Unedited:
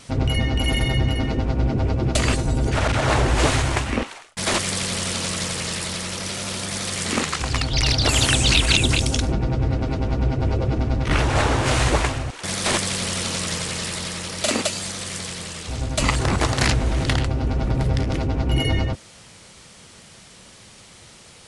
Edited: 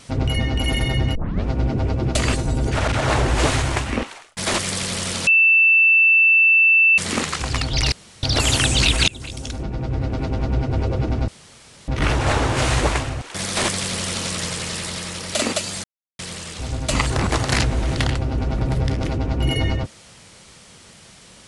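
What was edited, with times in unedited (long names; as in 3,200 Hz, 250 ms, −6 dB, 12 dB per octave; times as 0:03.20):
0:01.15: tape start 0.31 s
0:05.27–0:06.98: beep over 2,660 Hz −10.5 dBFS
0:07.92: splice in room tone 0.31 s
0:08.77–0:09.94: fade in, from −23 dB
0:10.97: splice in room tone 0.60 s
0:14.93–0:15.28: silence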